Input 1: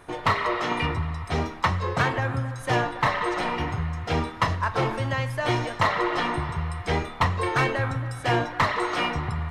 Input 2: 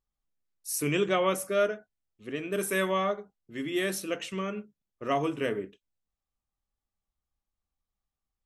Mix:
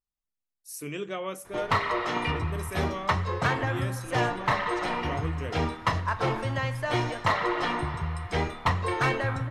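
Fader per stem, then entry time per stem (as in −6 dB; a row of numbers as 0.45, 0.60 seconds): −2.5, −8.0 decibels; 1.45, 0.00 seconds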